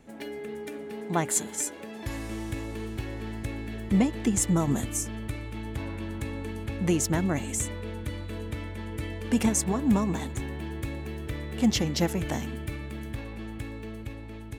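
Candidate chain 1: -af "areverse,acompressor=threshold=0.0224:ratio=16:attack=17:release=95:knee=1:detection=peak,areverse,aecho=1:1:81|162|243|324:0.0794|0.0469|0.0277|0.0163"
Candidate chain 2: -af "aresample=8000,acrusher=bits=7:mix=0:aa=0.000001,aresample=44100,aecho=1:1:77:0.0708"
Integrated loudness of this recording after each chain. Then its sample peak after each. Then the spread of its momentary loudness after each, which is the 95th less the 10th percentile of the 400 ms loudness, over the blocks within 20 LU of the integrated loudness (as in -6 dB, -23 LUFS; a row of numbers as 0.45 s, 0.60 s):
-36.0 LUFS, -31.0 LUFS; -18.0 dBFS, -12.0 dBFS; 5 LU, 12 LU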